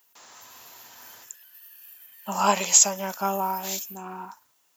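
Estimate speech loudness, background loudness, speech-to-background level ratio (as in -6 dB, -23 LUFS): -22.0 LUFS, -41.5 LUFS, 19.5 dB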